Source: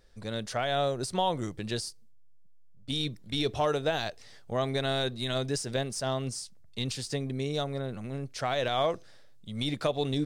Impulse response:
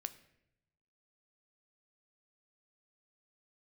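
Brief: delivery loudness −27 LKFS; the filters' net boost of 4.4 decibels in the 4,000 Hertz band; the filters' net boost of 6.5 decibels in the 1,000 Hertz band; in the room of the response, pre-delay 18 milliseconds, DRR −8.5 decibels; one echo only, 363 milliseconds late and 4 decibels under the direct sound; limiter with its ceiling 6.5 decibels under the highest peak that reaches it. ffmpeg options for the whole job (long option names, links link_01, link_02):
-filter_complex "[0:a]equalizer=frequency=1000:width_type=o:gain=9,equalizer=frequency=4000:width_type=o:gain=4.5,alimiter=limit=-17dB:level=0:latency=1,aecho=1:1:363:0.631,asplit=2[link_01][link_02];[1:a]atrim=start_sample=2205,adelay=18[link_03];[link_02][link_03]afir=irnorm=-1:irlink=0,volume=11dB[link_04];[link_01][link_04]amix=inputs=2:normalize=0,volume=-7dB"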